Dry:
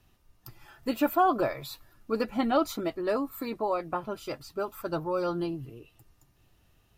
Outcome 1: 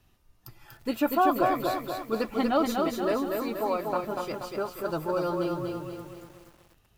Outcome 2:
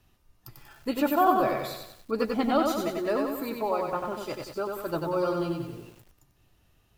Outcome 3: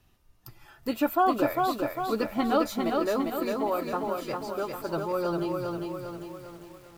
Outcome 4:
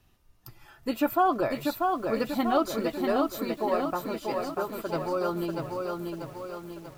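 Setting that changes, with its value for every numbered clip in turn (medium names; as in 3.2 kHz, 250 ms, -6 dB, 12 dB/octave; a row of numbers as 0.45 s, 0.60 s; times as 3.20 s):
bit-crushed delay, time: 240 ms, 94 ms, 401 ms, 640 ms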